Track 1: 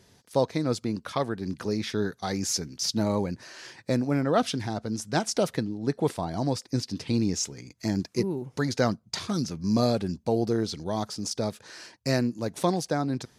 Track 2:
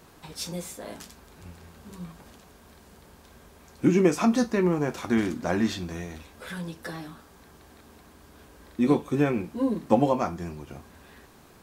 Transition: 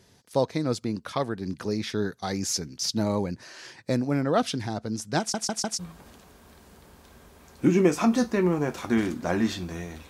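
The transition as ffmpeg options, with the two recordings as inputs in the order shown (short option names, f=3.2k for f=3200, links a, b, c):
-filter_complex "[0:a]apad=whole_dur=10.09,atrim=end=10.09,asplit=4[a][b][c][d];[a]atrim=end=5.342[e];[b]atrim=start=5.188:end=5.342[f];[c]atrim=start=5.188:end=5.342[g];[d]atrim=start=5.188:end=5.342[h];[1:a]atrim=start=1.988:end=6.29[i];[e][f]acrossfade=d=0.004:c1=hsin:c2=hsin[j];[j][g]acrossfade=d=0.004:c1=hsin:c2=hsin[k];[k][h]acrossfade=d=0.004:c1=hsin:c2=hsin[l];[l][i]acrossfade=d=0.004:c1=hsin:c2=hsin"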